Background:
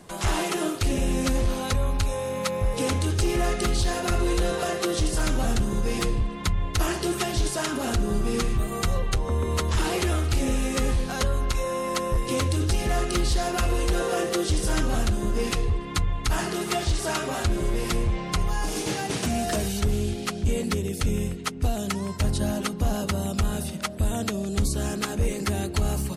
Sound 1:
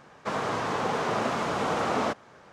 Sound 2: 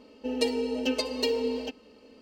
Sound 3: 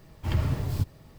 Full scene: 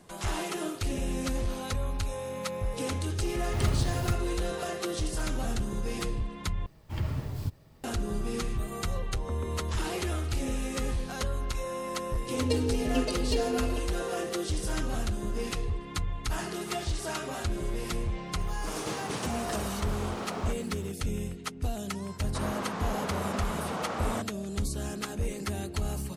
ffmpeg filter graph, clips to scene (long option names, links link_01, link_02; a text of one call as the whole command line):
ffmpeg -i bed.wav -i cue0.wav -i cue1.wav -i cue2.wav -filter_complex "[3:a]asplit=2[link_01][link_02];[1:a]asplit=2[link_03][link_04];[0:a]volume=-7dB[link_05];[link_01]acrusher=bits=8:mode=log:mix=0:aa=0.000001[link_06];[2:a]lowshelf=frequency=330:gain=11[link_07];[link_03]aeval=exprs='val(0)+0.5*0.0112*sgn(val(0))':channel_layout=same[link_08];[link_05]asplit=2[link_09][link_10];[link_09]atrim=end=6.664[link_11];[link_02]atrim=end=1.18,asetpts=PTS-STARTPTS,volume=-5.5dB[link_12];[link_10]atrim=start=7.836[link_13];[link_06]atrim=end=1.18,asetpts=PTS-STARTPTS,volume=-2dB,afade=type=in:duration=0.004:curve=hsin,afade=type=out:start_time=1.176:duration=0.004:curve=hsin,adelay=145089S[link_14];[link_07]atrim=end=2.21,asetpts=PTS-STARTPTS,volume=-6.5dB,afade=type=in:duration=0.004:curve=hsin,afade=type=out:start_time=2.206:duration=0.004:curve=hsin,adelay=12090[link_15];[link_08]atrim=end=2.52,asetpts=PTS-STARTPTS,volume=-11.5dB,afade=type=in:duration=0.004:curve=hsin,afade=type=out:start_time=2.516:duration=0.004:curve=hsin,adelay=18400[link_16];[link_04]atrim=end=2.52,asetpts=PTS-STARTPTS,volume=-7dB,afade=type=in:duration=0.004:curve=hsin,afade=type=out:start_time=2.516:duration=0.004:curve=hsin,adelay=22090[link_17];[link_11][link_12]acrossfade=duration=0.004:curve1=hsin:curve2=hsin[link_18];[link_18][link_13]acrossfade=duration=0.004:curve1=hsin:curve2=hsin[link_19];[link_19][link_14][link_15][link_16][link_17]amix=inputs=5:normalize=0" out.wav